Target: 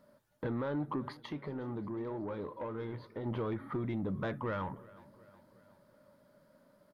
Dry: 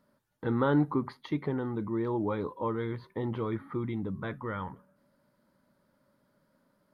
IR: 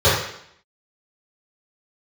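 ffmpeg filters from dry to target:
-filter_complex "[0:a]equalizer=frequency=600:width=4.9:gain=8,alimiter=limit=-23dB:level=0:latency=1:release=242,acompressor=threshold=-33dB:ratio=4,asoftclip=type=tanh:threshold=-30.5dB,asettb=1/sr,asplit=3[link_01][link_02][link_03];[link_01]atrim=end=1.174[link_04];[link_02]atrim=start=1.17:end=3.26,asetpts=PTS-STARTPTS,afade=type=in:duration=0.004:curve=qsin,afade=type=out:start_time=2.086:duration=0.004:curve=qsin,flanger=delay=9:depth=6.8:regen=-79:speed=1.9:shape=triangular[link_05];[link_03]atrim=start=3.256[link_06];[link_04][link_05]acrossfade=duration=0.004:curve1=hsin:curve2=qsin[link_07];[link_07][link_06]acrossfade=duration=0.004:curve1=qsin:curve2=hsin,aecho=1:1:365|730|1095|1460:0.0841|0.0463|0.0255|0.014,volume=3dB"

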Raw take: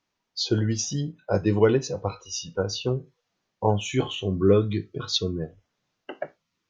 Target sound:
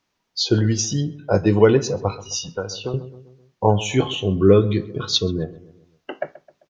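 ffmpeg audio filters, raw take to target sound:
ffmpeg -i in.wav -filter_complex "[0:a]asplit=2[link_01][link_02];[link_02]adelay=131,lowpass=frequency=1600:poles=1,volume=-17dB,asplit=2[link_03][link_04];[link_04]adelay=131,lowpass=frequency=1600:poles=1,volume=0.5,asplit=2[link_05][link_06];[link_06]adelay=131,lowpass=frequency=1600:poles=1,volume=0.5,asplit=2[link_07][link_08];[link_08]adelay=131,lowpass=frequency=1600:poles=1,volume=0.5[link_09];[link_01][link_03][link_05][link_07][link_09]amix=inputs=5:normalize=0,asettb=1/sr,asplit=3[link_10][link_11][link_12];[link_10]atrim=end=2.484[link_13];[link_11]atrim=start=2.48:end=2.94,asetpts=PTS-STARTPTS,afade=type=in:duration=0.004:curve=qsin,afade=type=out:start_time=0.456:duration=0.004:curve=qsin,acrossover=split=490|1700[link_14][link_15][link_16];[link_14]acompressor=threshold=-36dB:ratio=4[link_17];[link_15]acompressor=threshold=-34dB:ratio=4[link_18];[link_16]acompressor=threshold=-37dB:ratio=4[link_19];[link_17][link_18][link_19]amix=inputs=3:normalize=0[link_20];[link_12]atrim=start=2.936[link_21];[link_13][link_20]acrossfade=duration=0.004:curve1=hsin:curve2=qsin[link_22];[link_22][link_21]acrossfade=duration=0.004:curve1=qsin:curve2=hsin,volume=5.5dB" out.wav

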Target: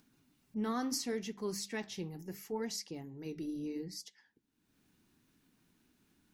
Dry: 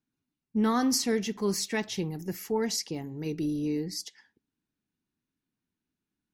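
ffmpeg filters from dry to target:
ffmpeg -i in.wav -af "flanger=delay=3.8:depth=8.1:regen=-74:speed=0.73:shape=triangular,acompressor=mode=upward:threshold=-45dB:ratio=2.5,bandreject=frequency=50:width_type=h:width=6,bandreject=frequency=100:width_type=h:width=6,bandreject=frequency=150:width_type=h:width=6,bandreject=frequency=200:width_type=h:width=6,volume=-5dB" out.wav

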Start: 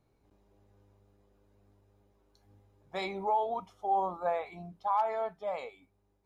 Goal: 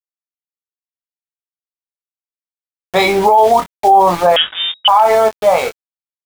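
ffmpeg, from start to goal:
ffmpeg -i in.wav -filter_complex "[0:a]equalizer=frequency=120:width=7.5:gain=15,aeval=exprs='val(0)*gte(abs(val(0)),0.00631)':channel_layout=same,asplit=2[link_01][link_02];[link_02]adelay=23,volume=-7dB[link_03];[link_01][link_03]amix=inputs=2:normalize=0,asettb=1/sr,asplit=3[link_04][link_05][link_06];[link_04]atrim=end=4.364[link_07];[link_05]atrim=start=4.36:end=4.88,asetpts=PTS-STARTPTS,afade=type=in:duration=0.004:curve=qsin,afade=type=out:start_time=0.516:duration=0.004:curve=qsin,lowpass=frequency=3200:width_type=q:width=0.5098,lowpass=frequency=3200:width_type=q:width=0.6013,lowpass=frequency=3200:width_type=q:width=0.9,lowpass=frequency=3200:width_type=q:width=2.563,afreqshift=-3800[link_08];[link_06]atrim=start=4.876[link_09];[link_07][link_08]acrossfade=duration=0.004:curve1=hsin:curve2=qsin[link_10];[link_10][link_09]acrossfade=duration=0.004:curve1=qsin:curve2=hsin,alimiter=level_in=24.5dB:limit=-1dB:release=50:level=0:latency=1,volume=-1dB" out.wav

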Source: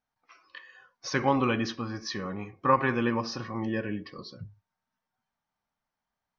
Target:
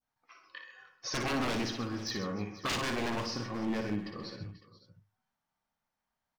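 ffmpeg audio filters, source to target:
ffmpeg -i in.wav -af "aeval=exprs='0.0501*(abs(mod(val(0)/0.0501+3,4)-2)-1)':channel_layout=same,aecho=1:1:58|131|304|486|557:0.447|0.251|0.1|0.119|0.112,adynamicequalizer=threshold=0.00631:dfrequency=1600:dqfactor=0.78:tfrequency=1600:tqfactor=0.78:attack=5:release=100:ratio=0.375:range=2:mode=cutabove:tftype=bell,volume=-1.5dB" out.wav

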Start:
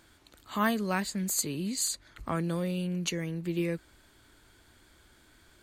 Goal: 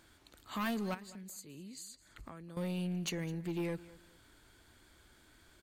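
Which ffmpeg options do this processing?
ffmpeg -i in.wav -filter_complex "[0:a]asettb=1/sr,asplit=3[link_01][link_02][link_03];[link_01]atrim=end=0.944[link_04];[link_02]atrim=start=0.94:end=2.57,asetpts=PTS-STARTPTS,afade=type=in:duration=0.004:curve=qsin,afade=type=out:start_time=1.626:duration=0.004:curve=qsin,acompressor=threshold=-43dB:ratio=16[link_05];[link_03]atrim=start=2.566[link_06];[link_04][link_05]acrossfade=duration=0.004:curve1=hsin:curve2=qsin[link_07];[link_07][link_06]acrossfade=duration=0.004:curve1=qsin:curve2=hsin,asoftclip=type=tanh:threshold=-27.5dB,aecho=1:1:210|420:0.106|0.0275,volume=-3dB" out.wav

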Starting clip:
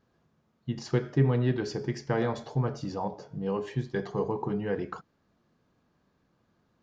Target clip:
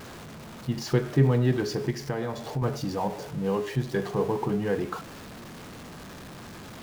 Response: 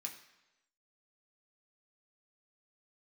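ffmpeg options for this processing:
-filter_complex "[0:a]aeval=exprs='val(0)+0.5*0.0106*sgn(val(0))':channel_layout=same,asettb=1/sr,asplit=3[link_01][link_02][link_03];[link_01]atrim=end=1.904[link_04];[link_02]atrim=start=1.9:end=2.62,asetpts=PTS-STARTPTS,afade=type=in:duration=0.004:curve=qsin,afade=type=out:start_time=0.716:duration=0.004:curve=qsin,acompressor=threshold=-31dB:ratio=3[link_05];[link_03]atrim=start=2.616[link_06];[link_04][link_05]acrossfade=duration=0.004:curve1=hsin:curve2=qsin[link_07];[link_07][link_06]acrossfade=duration=0.004:curve1=qsin:curve2=hsin,volume=2.5dB"

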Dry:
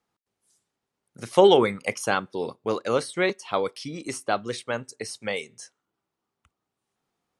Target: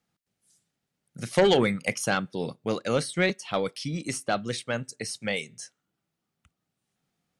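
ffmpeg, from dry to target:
ffmpeg -i in.wav -af "aeval=exprs='0.708*sin(PI/2*1.78*val(0)/0.708)':channel_layout=same,equalizer=frequency=160:width_type=o:width=0.67:gain=7,equalizer=frequency=400:width_type=o:width=0.67:gain=-6,equalizer=frequency=1000:width_type=o:width=0.67:gain=-9,aeval=exprs='0.794*(cos(1*acos(clip(val(0)/0.794,-1,1)))-cos(1*PI/2))+0.0708*(cos(2*acos(clip(val(0)/0.794,-1,1)))-cos(2*PI/2))':channel_layout=same,volume=-7dB" out.wav

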